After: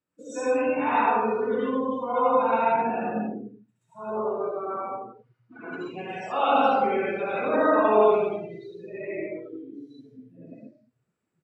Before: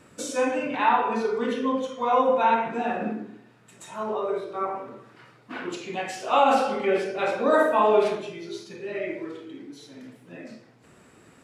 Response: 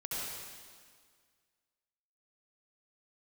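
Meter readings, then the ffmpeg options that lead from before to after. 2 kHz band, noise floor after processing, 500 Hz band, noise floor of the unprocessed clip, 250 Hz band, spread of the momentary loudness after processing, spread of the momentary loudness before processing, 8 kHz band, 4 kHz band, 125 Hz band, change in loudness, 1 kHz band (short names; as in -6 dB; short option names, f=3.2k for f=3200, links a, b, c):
-1.5 dB, -77 dBFS, 0.0 dB, -55 dBFS, 0.0 dB, 19 LU, 21 LU, n/a, -5.5 dB, +0.5 dB, 0.0 dB, -0.5 dB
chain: -filter_complex "[0:a]asplit=2[a][b];[b]adelay=84,lowpass=f=2k:p=1,volume=-10.5dB,asplit=2[c][d];[d]adelay=84,lowpass=f=2k:p=1,volume=0.37,asplit=2[e][f];[f]adelay=84,lowpass=f=2k:p=1,volume=0.37,asplit=2[g][h];[h]adelay=84,lowpass=f=2k:p=1,volume=0.37[i];[a][c][e][g][i]amix=inputs=5:normalize=0[j];[1:a]atrim=start_sample=2205,afade=t=out:st=0.37:d=0.01,atrim=end_sample=16758[k];[j][k]afir=irnorm=-1:irlink=0,afftdn=nr=28:nf=-33,volume=-3dB"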